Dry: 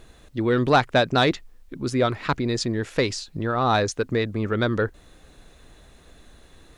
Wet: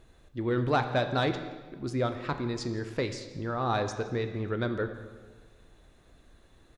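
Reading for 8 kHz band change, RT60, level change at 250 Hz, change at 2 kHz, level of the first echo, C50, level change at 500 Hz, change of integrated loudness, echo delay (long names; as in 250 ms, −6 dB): −11.5 dB, 1.4 s, −7.5 dB, −9.0 dB, −20.5 dB, 9.0 dB, −7.5 dB, −8.0 dB, 170 ms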